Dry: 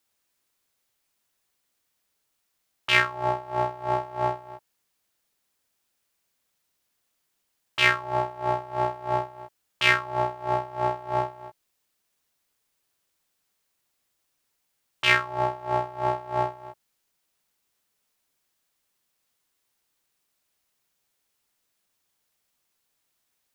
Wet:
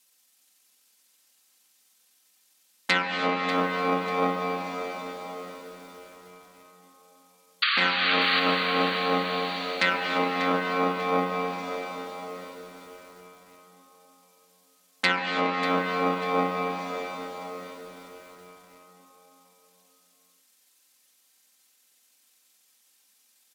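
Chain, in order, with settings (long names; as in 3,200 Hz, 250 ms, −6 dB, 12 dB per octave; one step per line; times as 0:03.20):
lower of the sound and its delayed copy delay 2.8 ms
pitch shifter −5.5 semitones
sound drawn into the spectrogram noise, 0:07.62–0:08.40, 1,100–4,700 Hz −28 dBFS
downward compressor 12 to 1, threshold −24 dBFS, peak gain reduction 11 dB
high-shelf EQ 2,600 Hz +11.5 dB
convolution reverb RT60 5.1 s, pre-delay 118 ms, DRR 2 dB
treble cut that deepens with the level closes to 2,500 Hz, closed at −24 dBFS
high-pass filter 170 Hz 24 dB per octave
feedback echo at a low word length 592 ms, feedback 35%, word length 8 bits, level −11 dB
level +3.5 dB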